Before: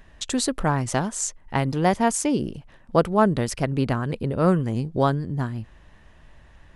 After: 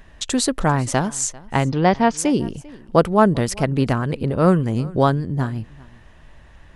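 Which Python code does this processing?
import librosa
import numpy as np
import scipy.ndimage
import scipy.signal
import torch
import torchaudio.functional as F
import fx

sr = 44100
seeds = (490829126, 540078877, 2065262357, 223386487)

p1 = fx.steep_lowpass(x, sr, hz=5300.0, slope=36, at=(1.64, 2.17), fade=0.02)
p2 = p1 + fx.echo_single(p1, sr, ms=395, db=-22.5, dry=0)
y = p2 * librosa.db_to_amplitude(4.0)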